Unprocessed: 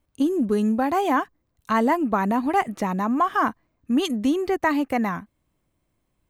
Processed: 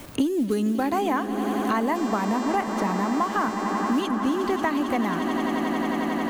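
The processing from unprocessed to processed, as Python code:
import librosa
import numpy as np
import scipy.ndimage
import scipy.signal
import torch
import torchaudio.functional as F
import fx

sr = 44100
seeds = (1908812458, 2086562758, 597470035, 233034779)

y = fx.law_mismatch(x, sr, coded='mu')
y = fx.dmg_buzz(y, sr, base_hz=400.0, harmonics=20, level_db=-42.0, tilt_db=-1, odd_only=False, at=(1.94, 2.55), fade=0.02)
y = fx.echo_swell(y, sr, ms=90, loudest=8, wet_db=-15.0)
y = fx.band_squash(y, sr, depth_pct=100)
y = y * 10.0 ** (-4.0 / 20.0)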